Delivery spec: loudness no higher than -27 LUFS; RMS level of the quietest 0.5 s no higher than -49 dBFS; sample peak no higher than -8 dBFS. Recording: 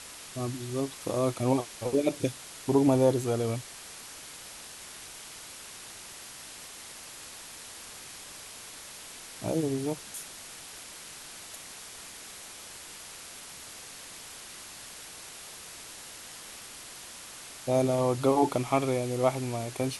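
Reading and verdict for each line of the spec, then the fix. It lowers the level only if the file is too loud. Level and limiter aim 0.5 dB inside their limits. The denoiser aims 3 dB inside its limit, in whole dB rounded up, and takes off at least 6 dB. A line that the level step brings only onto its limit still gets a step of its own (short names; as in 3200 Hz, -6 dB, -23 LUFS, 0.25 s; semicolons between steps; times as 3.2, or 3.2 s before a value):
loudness -33.0 LUFS: OK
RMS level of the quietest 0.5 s -45 dBFS: fail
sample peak -11.5 dBFS: OK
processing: denoiser 7 dB, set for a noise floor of -45 dBFS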